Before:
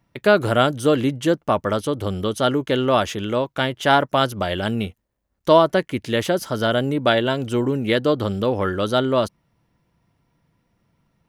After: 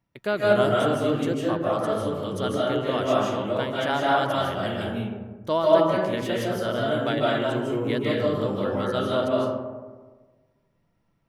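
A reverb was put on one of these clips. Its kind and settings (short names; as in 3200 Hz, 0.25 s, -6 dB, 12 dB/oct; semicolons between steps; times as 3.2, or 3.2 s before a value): digital reverb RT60 1.4 s, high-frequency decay 0.35×, pre-delay 0.115 s, DRR -5 dB; gain -11 dB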